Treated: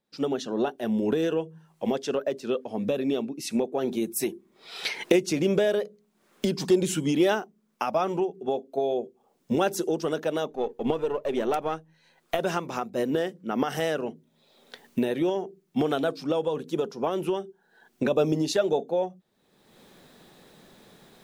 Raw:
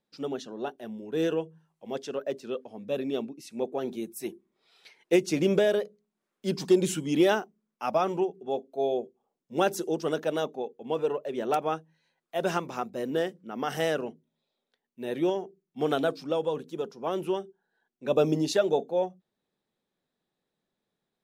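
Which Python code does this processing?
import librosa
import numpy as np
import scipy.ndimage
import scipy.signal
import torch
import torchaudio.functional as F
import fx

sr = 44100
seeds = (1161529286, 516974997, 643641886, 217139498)

y = fx.halfwave_gain(x, sr, db=-3.0, at=(10.5, 12.39))
y = fx.recorder_agc(y, sr, target_db=-18.0, rise_db_per_s=37.0, max_gain_db=30)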